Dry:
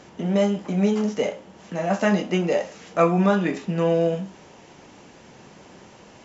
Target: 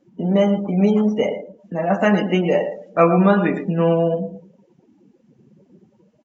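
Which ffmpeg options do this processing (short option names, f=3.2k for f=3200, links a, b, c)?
-af "aecho=1:1:113|226|339:0.355|0.0993|0.0278,afftdn=nr=29:nf=-35,volume=4dB"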